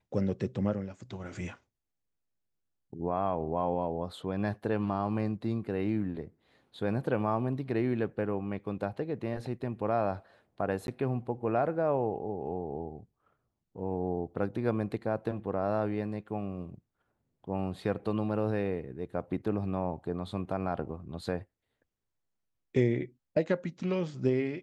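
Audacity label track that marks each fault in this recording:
10.870000	10.880000	dropout 11 ms

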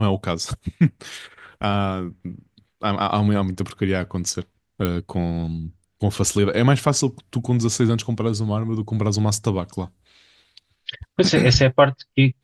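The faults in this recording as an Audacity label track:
4.850000	4.850000	pop -9 dBFS

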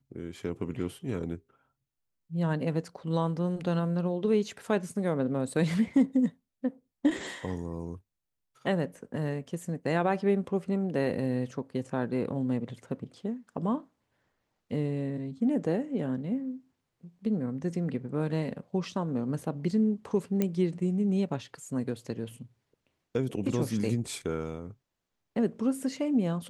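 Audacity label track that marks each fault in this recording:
20.420000	20.420000	pop -15 dBFS

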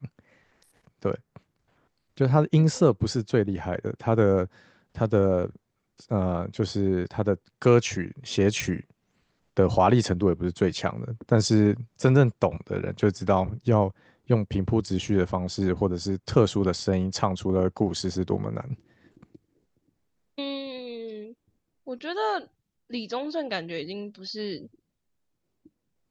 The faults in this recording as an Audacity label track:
8.600000	8.600000	pop

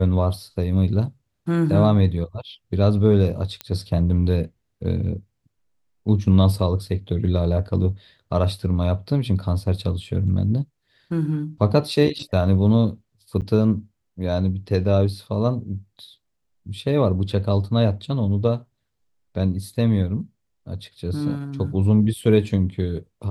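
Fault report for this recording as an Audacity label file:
3.610000	3.610000	pop -13 dBFS
13.410000	13.420000	dropout 8.8 ms

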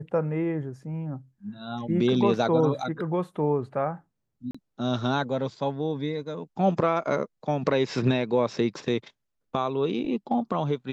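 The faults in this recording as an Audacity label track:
4.510000	4.540000	dropout 35 ms

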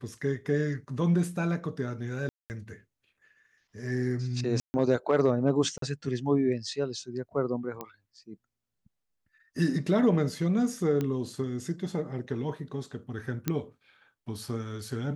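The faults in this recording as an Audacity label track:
2.290000	2.500000	dropout 209 ms
4.600000	4.740000	dropout 140 ms
5.780000	5.820000	dropout 43 ms
7.810000	7.810000	pop -21 dBFS
11.010000	11.010000	pop -18 dBFS
13.480000	13.480000	pop -13 dBFS

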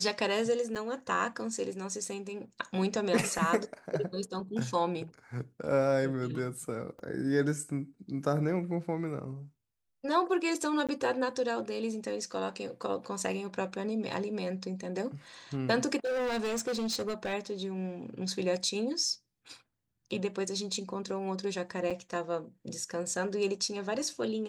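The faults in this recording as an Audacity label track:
0.750000	0.760000	dropout 7.2 ms
6.990000	6.990000	dropout 3.5 ms
10.870000	10.890000	dropout 17 ms
16.050000	17.340000	clipped -29 dBFS
21.900000	21.910000	dropout 6.1 ms

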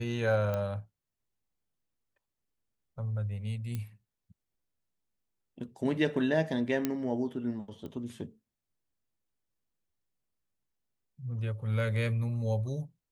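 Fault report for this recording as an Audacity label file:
0.540000	0.540000	pop -21 dBFS
3.750000	3.750000	pop -23 dBFS
6.850000	6.850000	pop -15 dBFS
7.860000	7.860000	pop -31 dBFS

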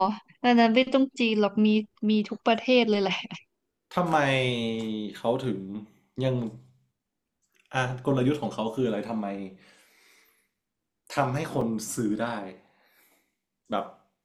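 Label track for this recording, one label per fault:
11.610000	11.610000	dropout 3.6 ms

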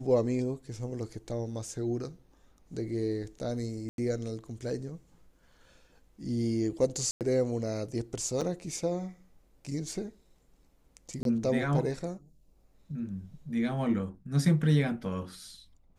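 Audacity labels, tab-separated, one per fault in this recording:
3.890000	3.980000	dropout 92 ms
7.110000	7.210000	dropout 98 ms
8.410000	8.420000	dropout 5.9 ms
11.230000	11.250000	dropout 22 ms

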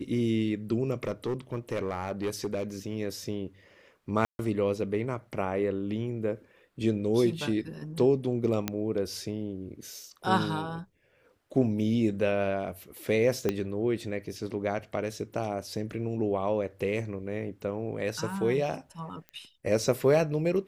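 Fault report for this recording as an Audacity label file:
1.030000	2.630000	clipped -25.5 dBFS
4.250000	4.390000	dropout 141 ms
8.680000	8.680000	pop -12 dBFS
13.490000	13.490000	pop -14 dBFS
19.290000	19.290000	pop -29 dBFS

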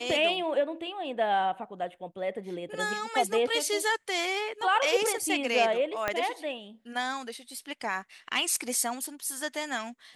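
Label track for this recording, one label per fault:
6.080000	6.080000	pop -13 dBFS

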